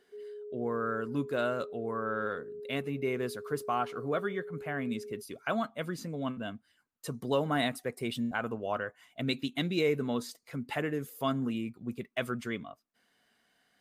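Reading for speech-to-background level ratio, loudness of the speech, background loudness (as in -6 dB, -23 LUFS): 9.5 dB, -34.5 LUFS, -44.0 LUFS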